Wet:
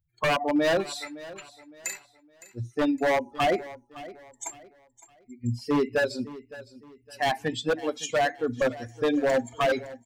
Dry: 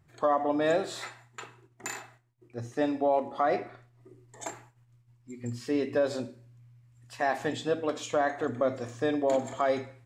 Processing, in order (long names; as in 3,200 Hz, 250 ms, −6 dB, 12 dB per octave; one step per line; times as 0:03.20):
spectral dynamics exaggerated over time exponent 2
wave folding −26.5 dBFS
repeating echo 562 ms, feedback 34%, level −17.5 dB
level +9 dB